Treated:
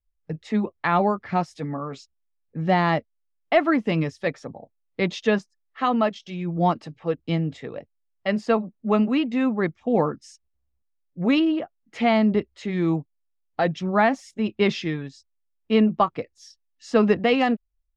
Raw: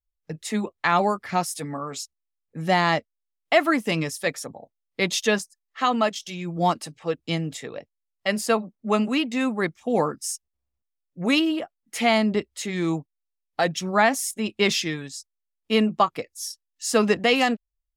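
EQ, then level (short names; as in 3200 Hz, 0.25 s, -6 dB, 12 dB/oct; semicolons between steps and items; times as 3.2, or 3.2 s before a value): air absorption 170 m; tilt -1.5 dB/oct; 0.0 dB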